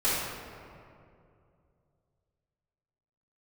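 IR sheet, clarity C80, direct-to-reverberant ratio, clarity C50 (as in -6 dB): 0.0 dB, -14.5 dB, -2.5 dB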